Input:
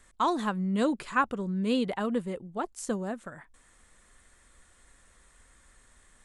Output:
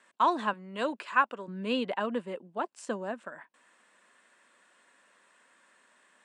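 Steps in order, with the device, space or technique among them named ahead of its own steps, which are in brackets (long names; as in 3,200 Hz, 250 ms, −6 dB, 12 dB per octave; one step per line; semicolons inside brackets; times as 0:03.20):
0:00.53–0:01.48: high-pass filter 450 Hz 6 dB per octave
television speaker (loudspeaker in its box 210–8,100 Hz, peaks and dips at 610 Hz +6 dB, 990 Hz +7 dB, 1,600 Hz +6 dB, 2,700 Hz +8 dB, 6,500 Hz −6 dB)
level −3.5 dB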